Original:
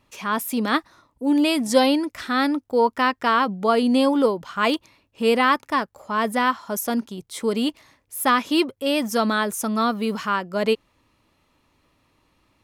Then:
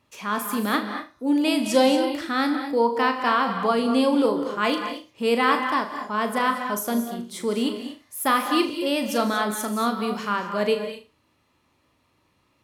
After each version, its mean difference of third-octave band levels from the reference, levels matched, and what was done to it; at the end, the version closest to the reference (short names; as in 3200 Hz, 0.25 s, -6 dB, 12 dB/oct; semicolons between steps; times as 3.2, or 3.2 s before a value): 6.0 dB: HPF 67 Hz; on a send: flutter echo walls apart 6.6 m, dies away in 0.28 s; on the sum: non-linear reverb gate 0.26 s rising, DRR 7 dB; gain -3 dB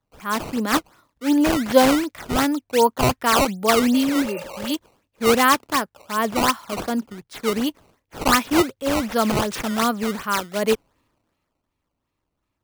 8.5 dB: spectral repair 3.96–4.68, 410–2800 Hz after; decimation with a swept rate 15×, swing 160% 2.7 Hz; three-band expander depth 40%; gain +1 dB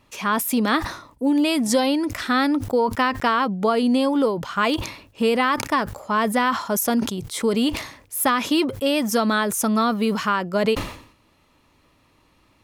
4.5 dB: compressor, threshold -21 dBFS, peak gain reduction 10 dB; dynamic EQ 100 Hz, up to +5 dB, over -48 dBFS, Q 1.8; sustainer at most 95 dB/s; gain +4.5 dB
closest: third